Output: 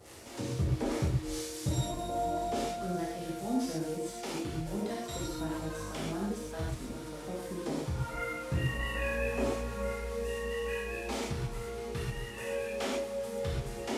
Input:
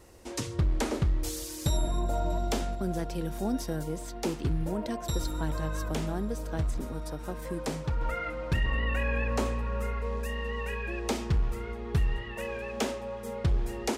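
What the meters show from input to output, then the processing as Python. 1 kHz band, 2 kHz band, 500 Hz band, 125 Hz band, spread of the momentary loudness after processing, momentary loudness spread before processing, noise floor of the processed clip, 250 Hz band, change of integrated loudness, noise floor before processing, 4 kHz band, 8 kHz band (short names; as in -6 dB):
-1.5 dB, -2.5 dB, 0.0 dB, -4.0 dB, 6 LU, 6 LU, -42 dBFS, -2.0 dB, -3.0 dB, -40 dBFS, -2.0 dB, -2.5 dB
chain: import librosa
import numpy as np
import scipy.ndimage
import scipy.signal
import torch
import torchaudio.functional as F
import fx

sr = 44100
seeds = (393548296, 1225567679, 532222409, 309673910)

y = fx.delta_mod(x, sr, bps=64000, step_db=-41.0)
y = scipy.signal.sosfilt(scipy.signal.butter(2, 83.0, 'highpass', fs=sr, output='sos'), y)
y = fx.harmonic_tremolo(y, sr, hz=4.8, depth_pct=70, crossover_hz=780.0)
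y = fx.rev_gated(y, sr, seeds[0], gate_ms=160, shape='flat', drr_db=-5.0)
y = y * 10.0 ** (-5.0 / 20.0)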